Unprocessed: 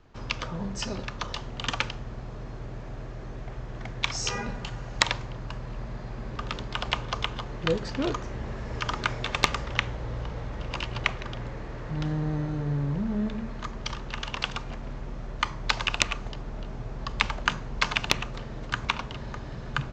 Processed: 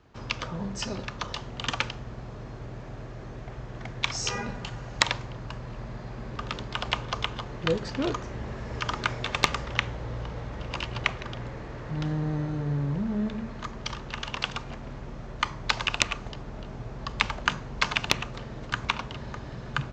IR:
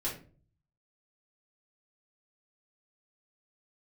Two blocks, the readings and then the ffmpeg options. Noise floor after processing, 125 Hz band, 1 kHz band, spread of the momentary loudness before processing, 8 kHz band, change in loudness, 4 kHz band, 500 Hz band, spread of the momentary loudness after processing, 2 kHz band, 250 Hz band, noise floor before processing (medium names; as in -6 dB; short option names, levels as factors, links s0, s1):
-41 dBFS, -0.5 dB, 0.0 dB, 12 LU, 0.0 dB, 0.0 dB, 0.0 dB, 0.0 dB, 14 LU, 0.0 dB, 0.0 dB, -39 dBFS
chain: -af "highpass=48"